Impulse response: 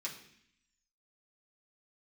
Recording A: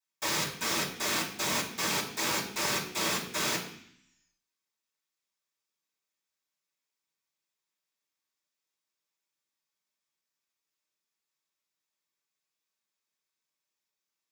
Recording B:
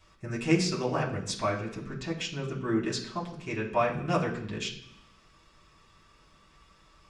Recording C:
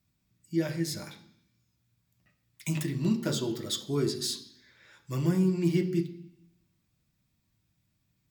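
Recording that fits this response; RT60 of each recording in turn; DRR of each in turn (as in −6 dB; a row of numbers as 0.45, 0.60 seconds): B; 0.65, 0.65, 0.65 seconds; −13.5, −5.0, 2.5 decibels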